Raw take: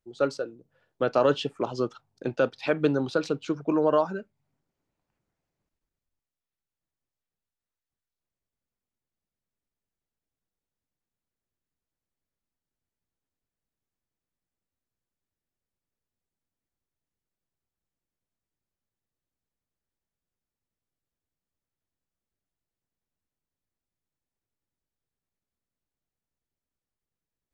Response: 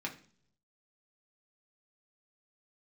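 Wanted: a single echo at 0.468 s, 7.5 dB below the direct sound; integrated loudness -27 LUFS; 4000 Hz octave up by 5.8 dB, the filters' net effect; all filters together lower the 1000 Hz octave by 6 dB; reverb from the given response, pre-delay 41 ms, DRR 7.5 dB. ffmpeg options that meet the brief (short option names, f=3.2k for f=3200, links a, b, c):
-filter_complex "[0:a]equalizer=f=1k:t=o:g=-8.5,equalizer=f=4k:t=o:g=8,aecho=1:1:468:0.422,asplit=2[a][b];[1:a]atrim=start_sample=2205,adelay=41[c];[b][c]afir=irnorm=-1:irlink=0,volume=-9.5dB[d];[a][d]amix=inputs=2:normalize=0,volume=1dB"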